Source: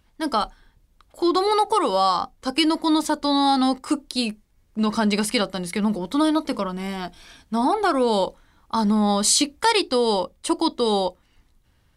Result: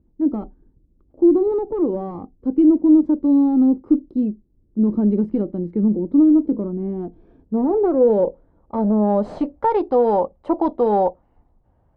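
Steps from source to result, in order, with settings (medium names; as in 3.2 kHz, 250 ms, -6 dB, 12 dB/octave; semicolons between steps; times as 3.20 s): one-sided clip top -19 dBFS; low-pass sweep 330 Hz -> 740 Hz, 6.55–9.90 s; trim +1.5 dB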